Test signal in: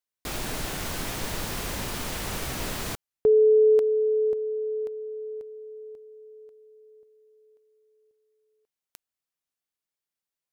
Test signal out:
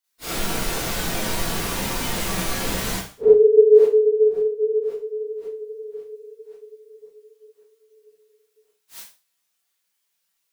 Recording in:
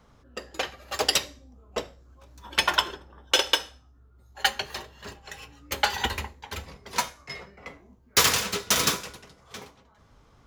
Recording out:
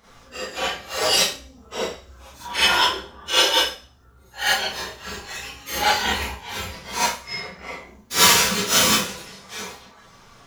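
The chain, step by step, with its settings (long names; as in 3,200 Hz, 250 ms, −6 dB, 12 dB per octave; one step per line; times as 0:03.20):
random phases in long frames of 100 ms
four-comb reverb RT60 0.33 s, combs from 33 ms, DRR −9 dB
one half of a high-frequency compander encoder only
level −3 dB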